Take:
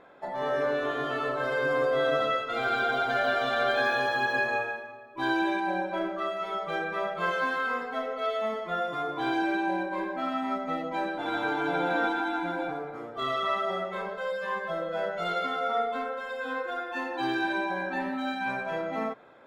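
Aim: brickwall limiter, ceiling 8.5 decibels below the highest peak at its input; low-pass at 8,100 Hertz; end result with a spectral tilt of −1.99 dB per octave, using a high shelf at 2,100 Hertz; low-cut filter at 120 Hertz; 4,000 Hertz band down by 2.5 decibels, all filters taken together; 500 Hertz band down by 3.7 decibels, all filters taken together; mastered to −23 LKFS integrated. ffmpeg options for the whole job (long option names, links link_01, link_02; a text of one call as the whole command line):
ffmpeg -i in.wav -af "highpass=120,lowpass=8100,equalizer=frequency=500:width_type=o:gain=-5,highshelf=frequency=2100:gain=3.5,equalizer=frequency=4000:width_type=o:gain=-6,volume=10dB,alimiter=limit=-14.5dB:level=0:latency=1" out.wav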